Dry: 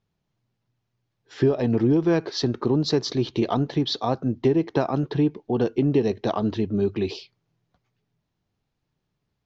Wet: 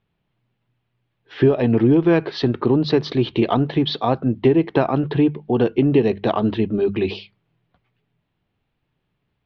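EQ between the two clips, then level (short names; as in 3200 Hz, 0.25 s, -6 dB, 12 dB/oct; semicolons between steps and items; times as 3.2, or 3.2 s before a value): synth low-pass 3000 Hz, resonance Q 1.7; air absorption 99 m; notches 50/100/150/200 Hz; +5.0 dB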